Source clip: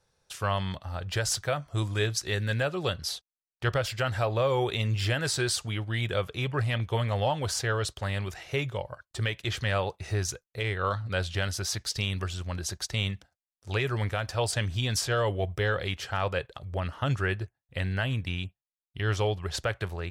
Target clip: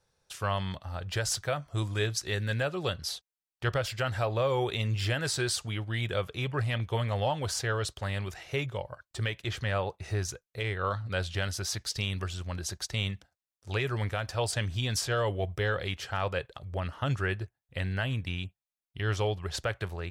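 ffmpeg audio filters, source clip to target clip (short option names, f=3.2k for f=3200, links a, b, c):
-filter_complex "[0:a]asettb=1/sr,asplit=3[a][b][c];[a]atrim=end=8.664[d];[b]atrim=start=8.66:end=10.95,asetpts=PTS-STARTPTS,afade=t=in:d=0.004:c=qsin,afade=t=out:st=2.286:d=0.004:c=qsin,adynamicequalizer=threshold=0.00631:dfrequency=2200:dqfactor=0.7:tfrequency=2200:tqfactor=0.7:attack=5:release=100:ratio=0.375:range=3:mode=cutabove:tftype=highshelf[e];[c]atrim=start=10.946[f];[d][e]acrossfade=d=0.004:c1=hsin:c2=qsin[g];[g][f]acrossfade=d=0.004:c1=qsin:c2=hsin,volume=-2dB"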